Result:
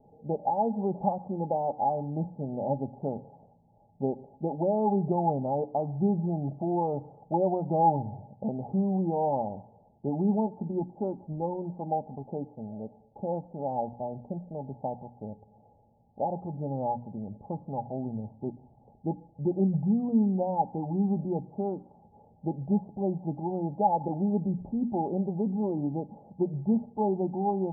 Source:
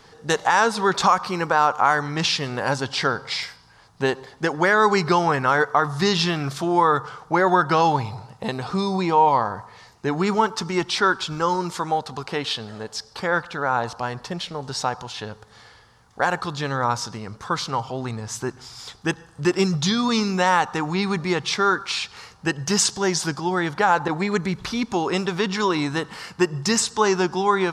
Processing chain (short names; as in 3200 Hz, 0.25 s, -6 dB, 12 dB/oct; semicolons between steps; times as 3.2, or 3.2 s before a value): rippled Chebyshev low-pass 860 Hz, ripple 9 dB; notches 60/120/180/240/300 Hz